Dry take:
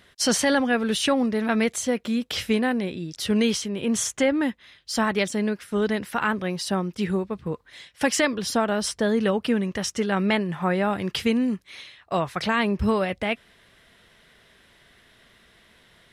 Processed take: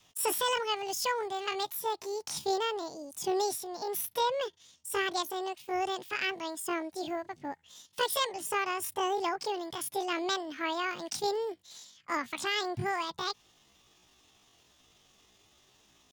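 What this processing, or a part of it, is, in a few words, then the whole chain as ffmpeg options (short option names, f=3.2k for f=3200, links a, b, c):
chipmunk voice: -af "adynamicequalizer=threshold=0.0141:dfrequency=210:dqfactor=0.98:tfrequency=210:tqfactor=0.98:attack=5:release=100:ratio=0.375:range=4:mode=cutabove:tftype=bell,asetrate=78577,aresample=44100,atempo=0.561231,volume=-7.5dB"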